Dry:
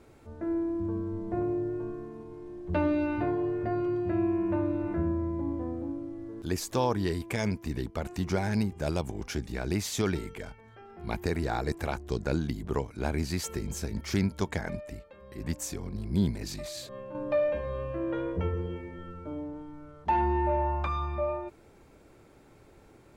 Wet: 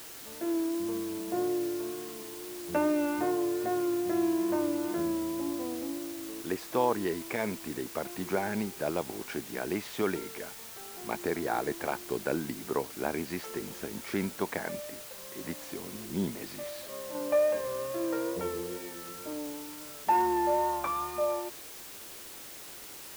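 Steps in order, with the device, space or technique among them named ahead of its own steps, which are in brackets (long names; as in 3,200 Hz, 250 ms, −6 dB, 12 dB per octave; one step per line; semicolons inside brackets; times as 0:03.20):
wax cylinder (band-pass filter 280–2,400 Hz; tape wow and flutter 29 cents; white noise bed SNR 13 dB)
level +1.5 dB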